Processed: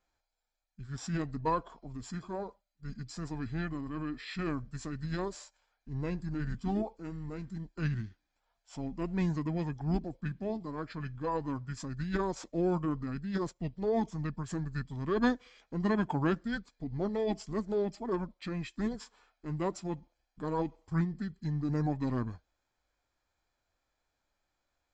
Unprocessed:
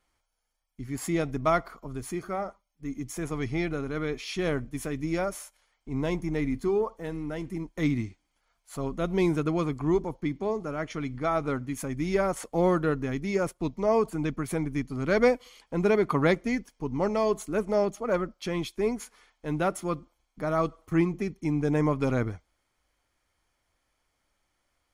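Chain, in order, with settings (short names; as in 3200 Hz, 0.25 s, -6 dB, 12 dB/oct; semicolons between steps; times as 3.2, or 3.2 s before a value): downsampling 22050 Hz; formant shift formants -5 st; gain -6 dB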